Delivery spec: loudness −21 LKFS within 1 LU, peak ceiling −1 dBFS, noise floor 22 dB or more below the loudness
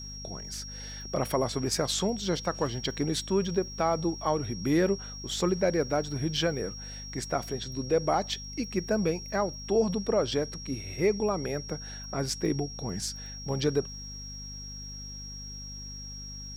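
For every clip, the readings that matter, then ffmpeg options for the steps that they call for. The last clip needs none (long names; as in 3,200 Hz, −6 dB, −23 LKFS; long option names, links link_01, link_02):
mains hum 50 Hz; hum harmonics up to 250 Hz; level of the hum −42 dBFS; interfering tone 5,600 Hz; level of the tone −41 dBFS; integrated loudness −30.5 LKFS; sample peak −14.0 dBFS; target loudness −21.0 LKFS
→ -af "bandreject=frequency=50:width_type=h:width=6,bandreject=frequency=100:width_type=h:width=6,bandreject=frequency=150:width_type=h:width=6,bandreject=frequency=200:width_type=h:width=6,bandreject=frequency=250:width_type=h:width=6"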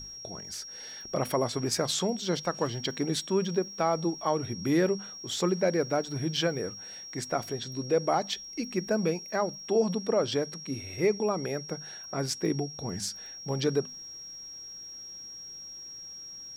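mains hum none found; interfering tone 5,600 Hz; level of the tone −41 dBFS
→ -af "bandreject=frequency=5600:width=30"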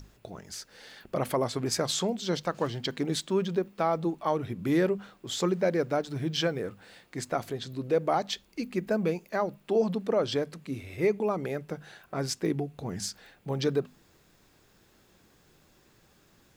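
interfering tone none found; integrated loudness −30.0 LKFS; sample peak −14.5 dBFS; target loudness −21.0 LKFS
→ -af "volume=9dB"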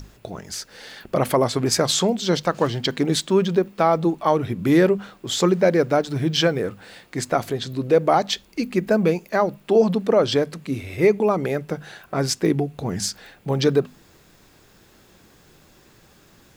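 integrated loudness −21.0 LKFS; sample peak −5.5 dBFS; background noise floor −54 dBFS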